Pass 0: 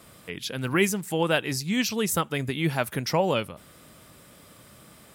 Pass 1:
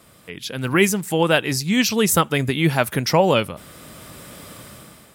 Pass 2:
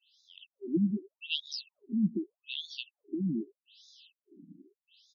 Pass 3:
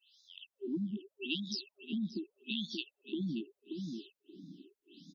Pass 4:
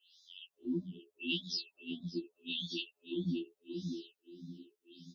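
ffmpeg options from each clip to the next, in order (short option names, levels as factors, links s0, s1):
-af "dynaudnorm=f=170:g=7:m=3.98"
-filter_complex "[0:a]asplit=2[s0][s1];[s1]adelay=122,lowpass=f=2000:p=1,volume=0.0944,asplit=2[s2][s3];[s3]adelay=122,lowpass=f=2000:p=1,volume=0.47,asplit=2[s4][s5];[s5]adelay=122,lowpass=f=2000:p=1,volume=0.47[s6];[s0][s2][s4][s6]amix=inputs=4:normalize=0,afftfilt=real='re*(1-between(b*sr/4096,410,2600))':imag='im*(1-between(b*sr/4096,410,2600))':win_size=4096:overlap=0.75,afftfilt=real='re*between(b*sr/1024,220*pow(4900/220,0.5+0.5*sin(2*PI*0.82*pts/sr))/1.41,220*pow(4900/220,0.5+0.5*sin(2*PI*0.82*pts/sr))*1.41)':imag='im*between(b*sr/1024,220*pow(4900/220,0.5+0.5*sin(2*PI*0.82*pts/sr))/1.41,220*pow(4900/220,0.5+0.5*sin(2*PI*0.82*pts/sr))*1.41)':win_size=1024:overlap=0.75,volume=0.531"
-filter_complex "[0:a]acompressor=threshold=0.0178:ratio=6,asplit=2[s0][s1];[s1]adelay=580,lowpass=f=1300:p=1,volume=0.596,asplit=2[s2][s3];[s3]adelay=580,lowpass=f=1300:p=1,volume=0.18,asplit=2[s4][s5];[s5]adelay=580,lowpass=f=1300:p=1,volume=0.18[s6];[s2][s4][s6]amix=inputs=3:normalize=0[s7];[s0][s7]amix=inputs=2:normalize=0,volume=1.12"
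-af "afftfilt=real='re*2*eq(mod(b,4),0)':imag='im*2*eq(mod(b,4),0)':win_size=2048:overlap=0.75,volume=1.5"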